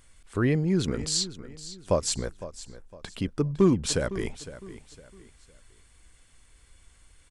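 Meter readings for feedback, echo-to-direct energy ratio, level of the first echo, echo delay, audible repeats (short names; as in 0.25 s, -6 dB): 34%, -14.5 dB, -15.0 dB, 0.508 s, 3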